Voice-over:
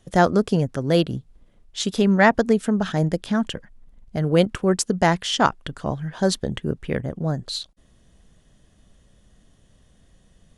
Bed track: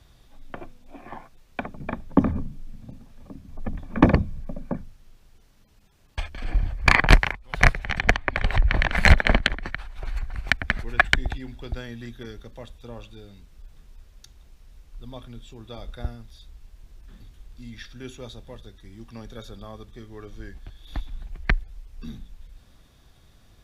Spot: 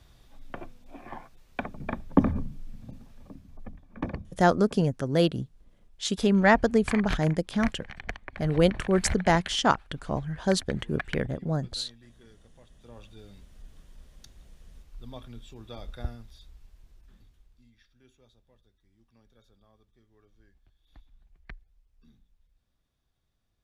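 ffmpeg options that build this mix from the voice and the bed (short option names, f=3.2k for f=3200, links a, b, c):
-filter_complex "[0:a]adelay=4250,volume=-4dB[a];[1:a]volume=12dB,afade=t=out:st=3.09:d=0.71:silence=0.177828,afade=t=in:st=12.69:d=0.63:silence=0.199526,afade=t=out:st=16.15:d=1.58:silence=0.1[b];[a][b]amix=inputs=2:normalize=0"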